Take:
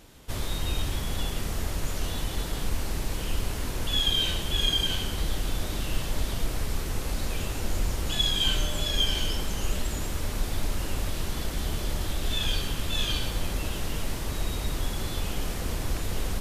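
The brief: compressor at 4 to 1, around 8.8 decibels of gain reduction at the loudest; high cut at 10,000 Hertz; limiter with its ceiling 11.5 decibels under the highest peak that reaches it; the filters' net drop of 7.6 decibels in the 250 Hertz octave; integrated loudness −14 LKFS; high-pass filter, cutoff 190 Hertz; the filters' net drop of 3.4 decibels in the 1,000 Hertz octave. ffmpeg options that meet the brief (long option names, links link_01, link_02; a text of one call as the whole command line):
ffmpeg -i in.wav -af "highpass=190,lowpass=10000,equalizer=frequency=250:width_type=o:gain=-8,equalizer=frequency=1000:width_type=o:gain=-4,acompressor=threshold=-33dB:ratio=4,volume=28dB,alimiter=limit=-7dB:level=0:latency=1" out.wav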